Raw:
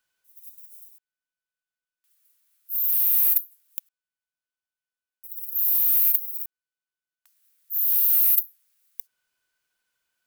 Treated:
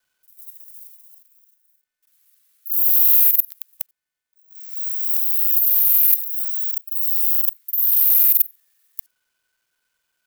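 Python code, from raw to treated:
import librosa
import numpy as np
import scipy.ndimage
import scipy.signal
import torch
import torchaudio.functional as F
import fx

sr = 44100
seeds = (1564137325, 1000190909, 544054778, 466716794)

y = fx.local_reverse(x, sr, ms=46.0)
y = fx.echo_pitch(y, sr, ms=413, semitones=3, count=3, db_per_echo=-3.0)
y = y * librosa.db_to_amplitude(5.0)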